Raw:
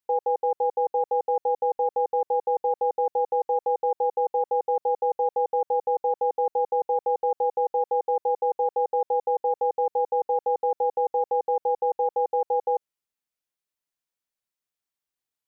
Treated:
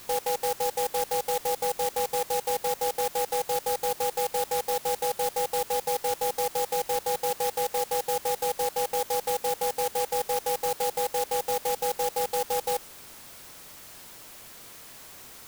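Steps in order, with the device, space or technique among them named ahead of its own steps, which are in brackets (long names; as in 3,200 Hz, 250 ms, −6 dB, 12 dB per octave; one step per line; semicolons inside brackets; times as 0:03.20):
early CD player with a faulty converter (converter with a step at zero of −32.5 dBFS; converter with an unsteady clock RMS 0.11 ms)
level −4.5 dB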